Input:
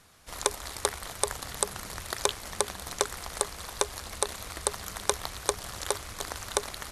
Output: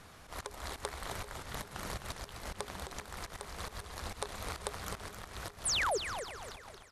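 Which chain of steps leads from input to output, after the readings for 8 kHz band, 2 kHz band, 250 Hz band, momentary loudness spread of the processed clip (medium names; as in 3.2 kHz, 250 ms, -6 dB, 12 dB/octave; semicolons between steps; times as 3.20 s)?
-11.0 dB, -3.0 dB, -4.5 dB, 13 LU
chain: fade out at the end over 1.92 s; treble shelf 3.5 kHz -9 dB; compression 4:1, threshold -42 dBFS, peak gain reduction 16.5 dB; slow attack 132 ms; painted sound fall, 5.65–5.98 s, 350–11000 Hz -38 dBFS; on a send: feedback delay 392 ms, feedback 39%, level -18 dB; on the sum: modulated delay 261 ms, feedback 35%, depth 124 cents, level -8.5 dB; trim +6.5 dB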